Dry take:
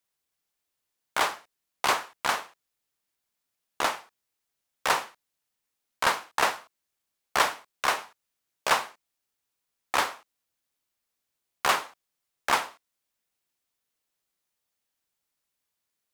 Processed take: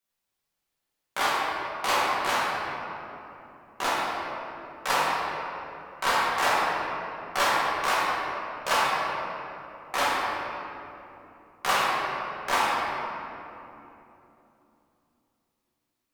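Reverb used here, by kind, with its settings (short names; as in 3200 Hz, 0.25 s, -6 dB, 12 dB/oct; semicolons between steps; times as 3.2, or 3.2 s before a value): shoebox room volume 150 m³, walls hard, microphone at 1.1 m; gain -5.5 dB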